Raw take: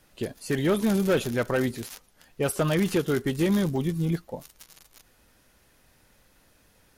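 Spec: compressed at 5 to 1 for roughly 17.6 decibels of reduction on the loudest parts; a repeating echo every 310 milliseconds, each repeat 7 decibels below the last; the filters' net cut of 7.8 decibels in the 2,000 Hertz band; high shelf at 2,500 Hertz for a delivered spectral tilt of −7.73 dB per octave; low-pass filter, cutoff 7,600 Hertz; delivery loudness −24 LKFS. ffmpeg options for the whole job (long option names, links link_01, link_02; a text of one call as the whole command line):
ffmpeg -i in.wav -af "lowpass=7600,equalizer=frequency=2000:width_type=o:gain=-6.5,highshelf=frequency=2500:gain=-9,acompressor=threshold=-41dB:ratio=5,aecho=1:1:310|620|930|1240|1550:0.447|0.201|0.0905|0.0407|0.0183,volume=19dB" out.wav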